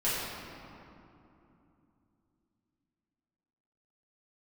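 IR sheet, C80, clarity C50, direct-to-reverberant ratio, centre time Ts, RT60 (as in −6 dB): −0.5 dB, −2.5 dB, −11.5 dB, 149 ms, 2.9 s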